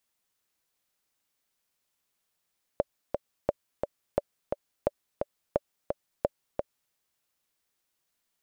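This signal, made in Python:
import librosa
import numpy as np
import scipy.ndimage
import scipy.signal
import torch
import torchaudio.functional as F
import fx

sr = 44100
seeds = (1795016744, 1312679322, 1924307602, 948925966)

y = fx.click_track(sr, bpm=174, beats=2, bars=6, hz=577.0, accent_db=4.5, level_db=-10.5)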